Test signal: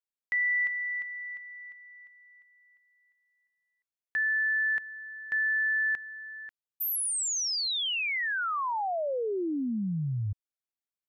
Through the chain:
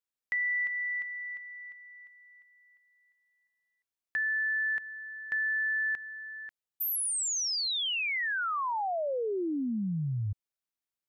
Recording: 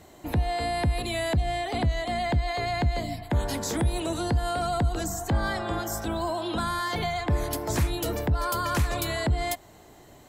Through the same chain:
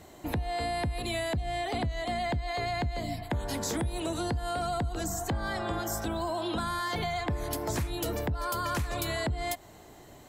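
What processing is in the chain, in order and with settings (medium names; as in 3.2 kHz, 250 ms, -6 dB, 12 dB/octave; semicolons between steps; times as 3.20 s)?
compression, threshold -28 dBFS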